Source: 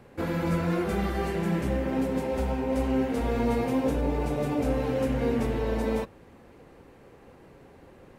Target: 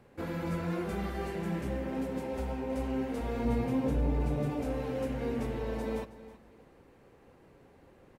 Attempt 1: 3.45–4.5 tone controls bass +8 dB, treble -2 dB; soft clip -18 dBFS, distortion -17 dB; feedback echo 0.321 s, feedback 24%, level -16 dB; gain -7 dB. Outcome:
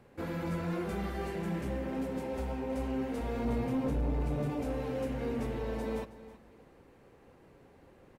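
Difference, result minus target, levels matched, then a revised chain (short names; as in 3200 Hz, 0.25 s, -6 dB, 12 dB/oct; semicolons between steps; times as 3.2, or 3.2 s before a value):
soft clip: distortion +17 dB
3.45–4.5 tone controls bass +8 dB, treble -2 dB; soft clip -7.5 dBFS, distortion -34 dB; feedback echo 0.321 s, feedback 24%, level -16 dB; gain -7 dB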